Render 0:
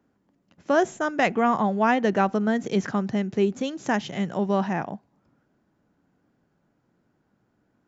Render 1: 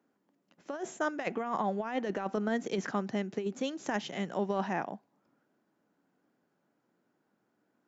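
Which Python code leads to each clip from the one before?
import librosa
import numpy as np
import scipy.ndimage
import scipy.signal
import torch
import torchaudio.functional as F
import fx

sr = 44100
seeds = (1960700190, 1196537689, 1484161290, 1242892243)

y = scipy.signal.sosfilt(scipy.signal.butter(2, 240.0, 'highpass', fs=sr, output='sos'), x)
y = fx.over_compress(y, sr, threshold_db=-24.0, ratio=-0.5)
y = y * librosa.db_to_amplitude(-6.5)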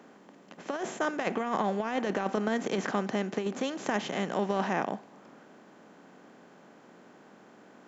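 y = fx.bin_compress(x, sr, power=0.6)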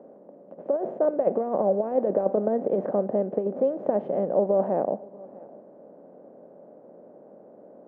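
y = fx.lowpass_res(x, sr, hz=570.0, q=4.9)
y = y + 10.0 ** (-23.0 / 20.0) * np.pad(y, (int(643 * sr / 1000.0), 0))[:len(y)]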